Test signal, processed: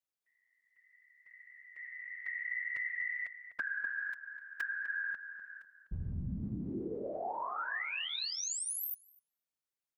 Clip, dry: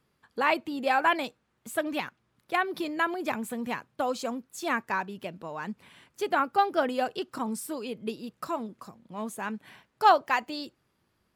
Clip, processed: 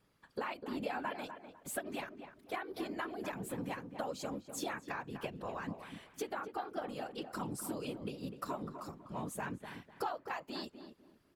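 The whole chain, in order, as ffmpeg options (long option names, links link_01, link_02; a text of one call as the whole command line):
ffmpeg -i in.wav -filter_complex "[0:a]acompressor=threshold=-36dB:ratio=12,afftfilt=real='hypot(re,im)*cos(2*PI*random(0))':imag='hypot(re,im)*sin(2*PI*random(1))':win_size=512:overlap=0.75,asplit=2[link_01][link_02];[link_02]adelay=250,lowpass=frequency=1500:poles=1,volume=-8dB,asplit=2[link_03][link_04];[link_04]adelay=250,lowpass=frequency=1500:poles=1,volume=0.28,asplit=2[link_05][link_06];[link_06]adelay=250,lowpass=frequency=1500:poles=1,volume=0.28[link_07];[link_03][link_05][link_07]amix=inputs=3:normalize=0[link_08];[link_01][link_08]amix=inputs=2:normalize=0,volume=5dB" out.wav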